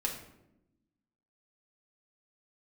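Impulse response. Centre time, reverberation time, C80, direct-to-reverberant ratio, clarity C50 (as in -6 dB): 26 ms, 0.90 s, 9.5 dB, -1.0 dB, 7.0 dB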